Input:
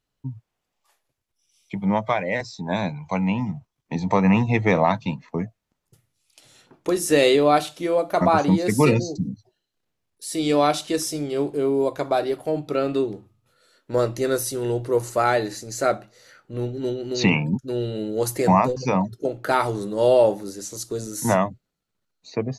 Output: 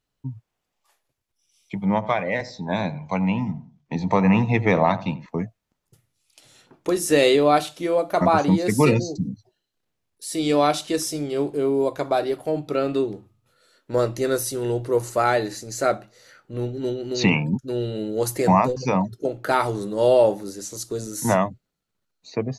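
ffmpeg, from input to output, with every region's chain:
-filter_complex "[0:a]asettb=1/sr,asplit=3[a][b][c];[a]atrim=end=1.854[d];[b]atrim=start=1.85:end=5.26,asetpts=PTS-STARTPTS,afade=t=in:d=0.004:c=qsin,afade=t=out:st=3.406:d=0.004:c=qsin,lowpass=6k,asplit=2[e][f];[f]adelay=86,lowpass=f=1.3k:p=1,volume=-14.5dB,asplit=2[g][h];[h]adelay=86,lowpass=f=1.3k:p=1,volume=0.36,asplit=2[i][j];[j]adelay=86,lowpass=f=1.3k:p=1,volume=0.36[k];[e][g][i][k]amix=inputs=4:normalize=0,atrim=end_sample=150381[l];[c]atrim=start=5.256[m];[d][l]acrossfade=d=0.004:c1=hsin:c2=qsin[n];[n][m]acrossfade=d=0.004:c1=qsin:c2=hsin"

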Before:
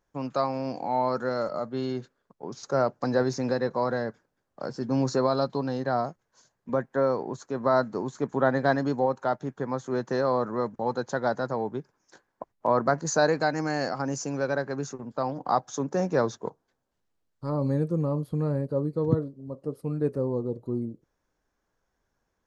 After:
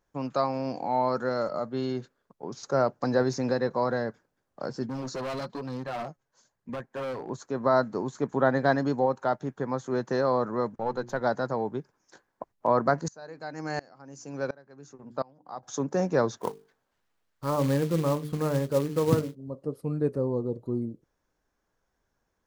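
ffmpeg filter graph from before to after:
-filter_complex "[0:a]asettb=1/sr,asplit=3[a][b][c];[a]atrim=end=4.864[d];[b]atrim=start=4.86:end=7.3,asetpts=PTS-STARTPTS,afade=t=in:d=0.004:c=qsin,afade=t=out:st=2.436:d=0.004:c=qsin,flanger=delay=0.4:depth=7.1:regen=38:speed=1.1:shape=sinusoidal,volume=30.5dB,asoftclip=hard,volume=-30.5dB[e];[c]atrim=start=7.296[f];[d][e]acrossfade=d=0.004:c1=hsin:c2=qsin[g];[g][f]acrossfade=d=0.004:c1=qsin:c2=hsin,asettb=1/sr,asplit=3[h][i][j];[h]atrim=end=10.764[k];[i]atrim=start=10.76:end=11.21,asetpts=PTS-STARTPTS,afade=t=in:d=0.004:c=qsin,afade=t=out:st=0.446:d=0.004:c=qsin,aeval=exprs='if(lt(val(0),0),0.708*val(0),val(0))':c=same,highshelf=f=4k:g=-6,bandreject=f=60:t=h:w=6,bandreject=f=120:t=h:w=6,bandreject=f=180:t=h:w=6,bandreject=f=240:t=h:w=6,bandreject=f=300:t=h:w=6,bandreject=f=360:t=h:w=6[l];[j]atrim=start=11.206[m];[k][l]acrossfade=d=0.004:c1=hsin:c2=qsin[n];[n][m]acrossfade=d=0.004:c1=qsin:c2=hsin,asettb=1/sr,asplit=3[o][p][q];[o]atrim=end=13.084[r];[p]atrim=start=13.08:end=15.63,asetpts=PTS-STARTPTS,afade=t=in:d=0.004:c=qsin,afade=t=out:st=2.546:d=0.004:c=qsin,bandreject=f=60:t=h:w=6,bandreject=f=120:t=h:w=6,bandreject=f=180:t=h:w=6,bandreject=f=240:t=h:w=6,bandreject=f=300:t=h:w=6,bandreject=f=360:t=h:w=6,aeval=exprs='val(0)*pow(10,-28*if(lt(mod(-1.4*n/s,1),2*abs(-1.4)/1000),1-mod(-1.4*n/s,1)/(2*abs(-1.4)/1000),(mod(-1.4*n/s,1)-2*abs(-1.4)/1000)/(1-2*abs(-1.4)/1000))/20)':c=same[s];[q]atrim=start=15.626[t];[r][s]acrossfade=d=0.004:c1=hsin:c2=qsin[u];[u][t]acrossfade=d=0.004:c1=qsin:c2=hsin,asettb=1/sr,asplit=3[v][w][x];[v]atrim=end=16.374[y];[w]atrim=start=16.37:end=19.35,asetpts=PTS-STARTPTS,afade=t=in:d=0.004:c=qsin,afade=t=out:st=2.976:d=0.004:c=qsin,equalizer=f=1.8k:t=o:w=2.7:g=8.5,bandreject=f=50:t=h:w=6,bandreject=f=100:t=h:w=6,bandreject=f=150:t=h:w=6,bandreject=f=200:t=h:w=6,bandreject=f=250:t=h:w=6,bandreject=f=300:t=h:w=6,bandreject=f=350:t=h:w=6,bandreject=f=400:t=h:w=6,bandreject=f=450:t=h:w=6,acrusher=bits=4:mode=log:mix=0:aa=0.000001[z];[x]atrim=start=19.346[aa];[y][z]acrossfade=d=0.004:c1=hsin:c2=qsin[ab];[ab][aa]acrossfade=d=0.004:c1=qsin:c2=hsin"

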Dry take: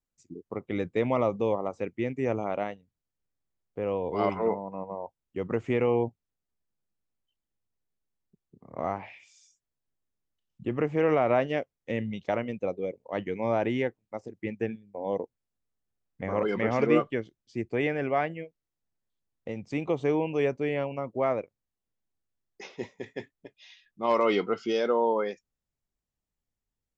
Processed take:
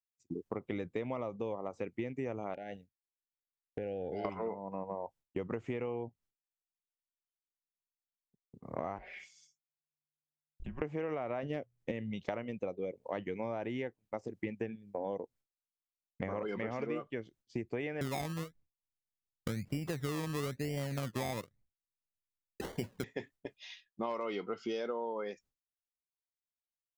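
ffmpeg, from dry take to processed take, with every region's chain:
-filter_complex "[0:a]asettb=1/sr,asplit=3[a][b][c];[a]atrim=end=2.544[d];[b]atrim=start=2.54:end=4.25,asetpts=PTS-STARTPTS,afade=t=in:d=0.004:c=qsin,afade=t=out:st=1.706:d=0.004:c=qsin,acompressor=threshold=-36dB:ratio=5:attack=3.2:release=140:knee=1:detection=peak,asuperstop=centerf=1100:order=20:qfactor=2[e];[c]atrim=start=4.246[f];[d][e]acrossfade=d=0.004:c1=hsin:c2=qsin[g];[g][f]acrossfade=d=0.004:c1=qsin:c2=hsin,asettb=1/sr,asplit=3[h][i][j];[h]atrim=end=8.984[k];[i]atrim=start=8.98:end=10.82,asetpts=PTS-STARTPTS,afade=t=in:d=0.004:c=qsin,afade=t=out:st=1.836:d=0.004:c=qsin,aecho=1:1:5.6:0.52,atrim=end_sample=81144,acompressor=threshold=-45dB:ratio=5:attack=3.2:release=140:knee=1:detection=peak,afreqshift=-150[l];[j]atrim=start=10.816[m];[k][l]acrossfade=d=0.004:c1=hsin:c2=qsin[n];[n][m]acrossfade=d=0.004:c1=qsin:c2=hsin,asettb=1/sr,asplit=3[o][p][q];[o]atrim=end=11.434[r];[p]atrim=start=11.43:end=11.92,asetpts=PTS-STARTPTS,afade=t=in:d=0.004:c=qsin,afade=t=out:st=0.486:d=0.004:c=qsin,asoftclip=type=hard:threshold=-18dB,lowshelf=f=380:g=10,bandreject=f=60:t=h:w=6,bandreject=f=120:t=h:w=6[s];[q]atrim=start=11.916[t];[r][s]acrossfade=d=0.004:c1=hsin:c2=qsin[u];[u][t]acrossfade=d=0.004:c1=qsin:c2=hsin,asettb=1/sr,asplit=3[v][w][x];[v]atrim=end=18.014[y];[w]atrim=start=18.01:end=23.04,asetpts=PTS-STARTPTS,afade=t=in:d=0.004:c=qsin,afade=t=out:st=5.026:d=0.004:c=qsin,bass=f=250:g=14,treble=f=4k:g=-13,acrusher=samples=24:mix=1:aa=0.000001:lfo=1:lforange=14.4:lforate=1[z];[x]atrim=start=23.036[aa];[y][z]acrossfade=d=0.004:c1=hsin:c2=qsin[ab];[ab][aa]acrossfade=d=0.004:c1=qsin:c2=hsin,agate=range=-33dB:threshold=-51dB:ratio=3:detection=peak,acompressor=threshold=-38dB:ratio=10,volume=4dB"

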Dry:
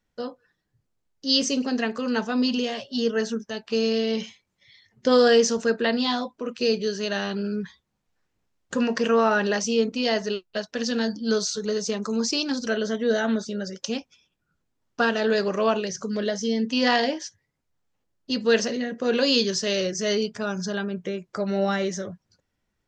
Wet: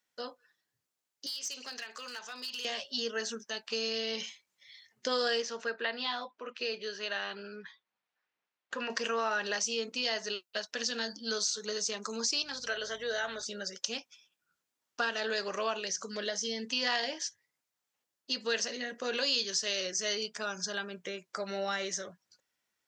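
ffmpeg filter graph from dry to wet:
-filter_complex "[0:a]asettb=1/sr,asplit=3[a][b][c];[a]atrim=end=1.264[d];[b]atrim=start=1.26:end=2.65,asetpts=PTS-STARTPTS,afade=t=in:d=0.004:c=qsin,afade=t=out:st=1.386:d=0.004:c=qsin,highpass=f=1.4k:p=1,acompressor=threshold=-33dB:ratio=20:attack=3.2:release=140:knee=1:detection=peak,aeval=exprs='clip(val(0),-1,0.0251)':c=same[e];[c]atrim=start=2.646[f];[d][e]acrossfade=d=0.004:c1=hsin:c2=qsin[g];[g][f]acrossfade=d=0.004:c1=qsin:c2=hsin,asettb=1/sr,asplit=3[h][i][j];[h]atrim=end=5.424[k];[i]atrim=start=5.42:end=8.9,asetpts=PTS-STARTPTS,afade=t=in:d=0.004:c=qsin,afade=t=out:st=3.476:d=0.004:c=qsin,highpass=130,lowpass=3k,equalizer=f=180:w=0.49:g=-5.5[l];[j]atrim=start=8.896[m];[k][l]acrossfade=d=0.004:c1=hsin:c2=qsin[n];[n][m]acrossfade=d=0.004:c1=qsin:c2=hsin,asettb=1/sr,asplit=3[o][p][q];[o]atrim=end=12.424[r];[p]atrim=start=12.42:end=13.43,asetpts=PTS-STARTPTS,afade=t=in:d=0.004:c=qsin,afade=t=out:st=1.006:d=0.004:c=qsin,highpass=410,acrossover=split=4600[s][t];[t]acompressor=threshold=-46dB:ratio=4:attack=1:release=60[u];[s][u]amix=inputs=2:normalize=0,aeval=exprs='val(0)+0.0112*(sin(2*PI*50*n/s)+sin(2*PI*2*50*n/s)/2+sin(2*PI*3*50*n/s)/3+sin(2*PI*4*50*n/s)/4+sin(2*PI*5*50*n/s)/5)':c=same[v];[q]atrim=start=13.426[w];[r][v]acrossfade=d=0.004:c1=hsin:c2=qsin[x];[x][w]acrossfade=d=0.004:c1=qsin:c2=hsin,highpass=f=1.3k:p=1,highshelf=f=7.3k:g=5.5,acompressor=threshold=-32dB:ratio=2"

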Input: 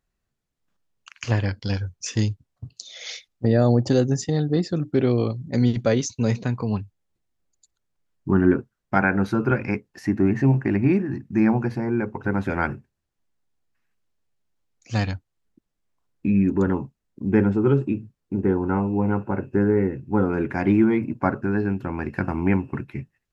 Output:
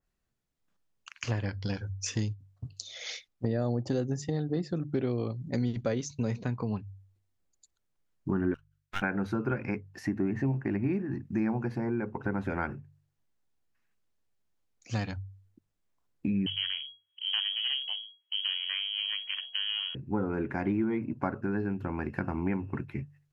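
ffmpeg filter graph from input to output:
-filter_complex "[0:a]asettb=1/sr,asplit=3[a][b][c];[a]atrim=end=8.544[d];[b]atrim=start=8.54:end=9.02,asetpts=PTS-STARTPTS,afade=t=in:d=0.004:c=qsin,afade=t=out:st=0.476:d=0.004:c=qsin,highpass=f=1.3k:w=0.5412,highpass=f=1.3k:w=1.3066,aeval=exprs='max(val(0),0)':c=same[e];[c]atrim=start=9.016[f];[d][e]acrossfade=d=0.004:c1=hsin:c2=qsin[g];[g][f]acrossfade=d=0.004:c1=qsin:c2=hsin,asettb=1/sr,asplit=3[h][i][j];[h]atrim=end=16.464[k];[i]atrim=start=16.46:end=19.95,asetpts=PTS-STARTPTS,afade=t=in:d=0.004:c=qsin,afade=t=out:st=3.486:d=0.004:c=qsin,aeval=exprs='if(lt(val(0),0),0.251*val(0),val(0))':c=same,lowpass=f=2.8k:t=q:w=0.5098,lowpass=f=2.8k:t=q:w=0.6013,lowpass=f=2.8k:t=q:w=0.9,lowpass=f=2.8k:t=q:w=2.563,afreqshift=-3300[l];[j]atrim=start=19.946[m];[k][l]acrossfade=d=0.004:c1=hsin:c2=qsin[n];[n][m]acrossfade=d=0.004:c1=qsin:c2=hsin,bandreject=f=48.48:t=h:w=4,bandreject=f=96.96:t=h:w=4,bandreject=f=145.44:t=h:w=4,acompressor=threshold=-27dB:ratio=2.5,adynamicequalizer=threshold=0.00316:dfrequency=2800:dqfactor=0.7:tfrequency=2800:tqfactor=0.7:attack=5:release=100:ratio=0.375:range=2.5:mode=cutabove:tftype=highshelf,volume=-2.5dB"

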